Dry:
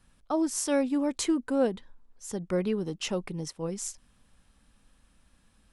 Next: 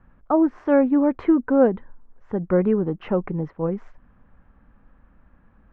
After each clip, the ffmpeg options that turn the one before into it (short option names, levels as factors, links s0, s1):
-af "lowpass=f=1700:w=0.5412,lowpass=f=1700:w=1.3066,volume=2.82"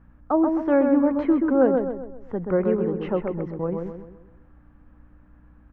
-filter_complex "[0:a]acrossover=split=220[s0][s1];[s0]alimiter=level_in=2:limit=0.0631:level=0:latency=1,volume=0.501[s2];[s2][s1]amix=inputs=2:normalize=0,aeval=exprs='val(0)+0.00282*(sin(2*PI*60*n/s)+sin(2*PI*2*60*n/s)/2+sin(2*PI*3*60*n/s)/3+sin(2*PI*4*60*n/s)/4+sin(2*PI*5*60*n/s)/5)':c=same,asplit=2[s3][s4];[s4]adelay=130,lowpass=f=1900:p=1,volume=0.631,asplit=2[s5][s6];[s6]adelay=130,lowpass=f=1900:p=1,volume=0.45,asplit=2[s7][s8];[s8]adelay=130,lowpass=f=1900:p=1,volume=0.45,asplit=2[s9][s10];[s10]adelay=130,lowpass=f=1900:p=1,volume=0.45,asplit=2[s11][s12];[s12]adelay=130,lowpass=f=1900:p=1,volume=0.45,asplit=2[s13][s14];[s14]adelay=130,lowpass=f=1900:p=1,volume=0.45[s15];[s3][s5][s7][s9][s11][s13][s15]amix=inputs=7:normalize=0,volume=0.794"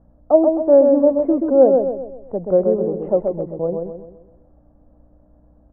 -af "lowpass=f=630:t=q:w=4.9,volume=0.891"